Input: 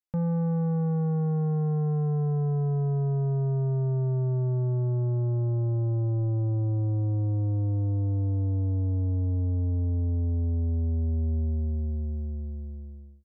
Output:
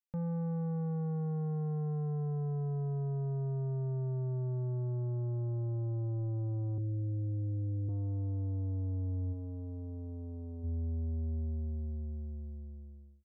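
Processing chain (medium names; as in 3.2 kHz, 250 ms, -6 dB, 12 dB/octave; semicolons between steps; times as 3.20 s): 6.78–7.89 s: steep low-pass 530 Hz 36 dB/octave; 9.32–10.63 s: peaking EQ 110 Hz -8 dB -> -14 dB 1.1 oct; trim -8.5 dB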